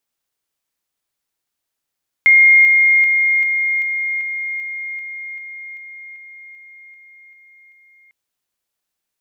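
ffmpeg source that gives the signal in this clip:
-f lavfi -i "aevalsrc='pow(10,(-6-3*floor(t/0.39))/20)*sin(2*PI*2130*t)':d=5.85:s=44100"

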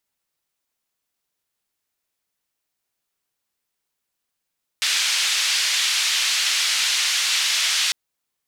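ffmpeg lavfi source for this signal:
-f lavfi -i "anoisesrc=c=white:d=3.1:r=44100:seed=1,highpass=f=2300,lowpass=f=4800,volume=-7.1dB"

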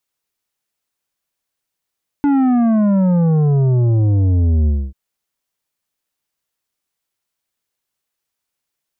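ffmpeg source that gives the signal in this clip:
-f lavfi -i "aevalsrc='0.251*clip((2.69-t)/0.26,0,1)*tanh(2.82*sin(2*PI*290*2.69/log(65/290)*(exp(log(65/290)*t/2.69)-1)))/tanh(2.82)':d=2.69:s=44100"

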